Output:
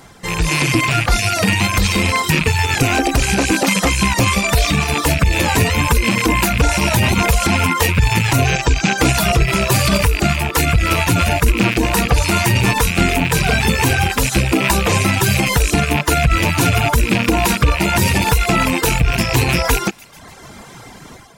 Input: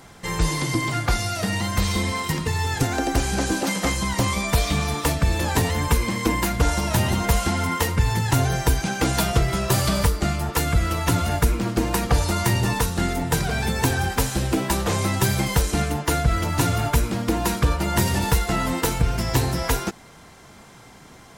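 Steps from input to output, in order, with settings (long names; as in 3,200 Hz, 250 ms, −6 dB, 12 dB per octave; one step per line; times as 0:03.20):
loose part that buzzes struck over −29 dBFS, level −15 dBFS
0:08.46–0:08.98: elliptic low-pass filter 7,600 Hz
delay with a high-pass on its return 145 ms, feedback 52%, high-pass 1,800 Hz, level −16 dB
brickwall limiter −14.5 dBFS, peak gain reduction 9 dB
automatic gain control gain up to 7.5 dB
reverb reduction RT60 0.84 s
level +4 dB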